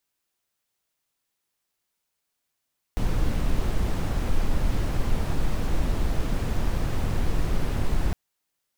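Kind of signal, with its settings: noise brown, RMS -22 dBFS 5.16 s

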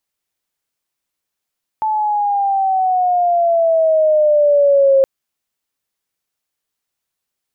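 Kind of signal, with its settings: gliding synth tone sine, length 3.22 s, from 875 Hz, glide -8.5 st, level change +7 dB, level -7.5 dB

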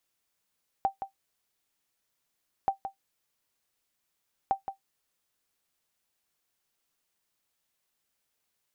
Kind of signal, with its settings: sonar ping 781 Hz, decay 0.12 s, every 1.83 s, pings 3, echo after 0.17 s, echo -9.5 dB -16.5 dBFS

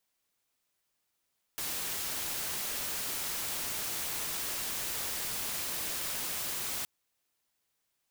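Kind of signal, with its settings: noise white, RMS -35.5 dBFS 5.27 s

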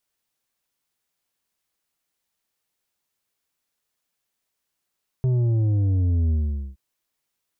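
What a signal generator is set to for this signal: sub drop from 130 Hz, over 1.52 s, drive 7 dB, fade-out 0.45 s, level -18.5 dB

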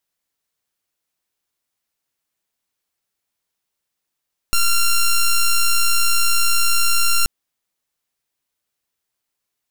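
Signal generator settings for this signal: pulse 1380 Hz, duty 7% -14 dBFS 2.73 s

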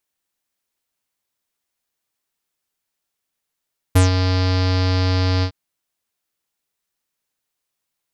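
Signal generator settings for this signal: synth note square F#2 24 dB/oct, low-pass 4800 Hz, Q 4.5, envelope 1.5 oct, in 0.13 s, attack 12 ms, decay 0.14 s, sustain -7.5 dB, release 0.08 s, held 1.48 s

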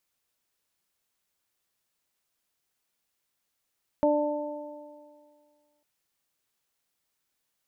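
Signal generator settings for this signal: additive tone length 1.80 s, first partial 296 Hz, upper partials 4/-4 dB, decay 1.94 s, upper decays 1.97/2.02 s, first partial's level -24 dB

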